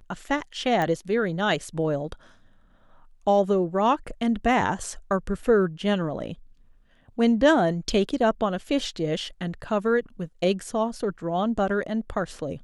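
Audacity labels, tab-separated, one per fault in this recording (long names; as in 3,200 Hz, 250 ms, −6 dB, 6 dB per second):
0.820000	0.820000	click −14 dBFS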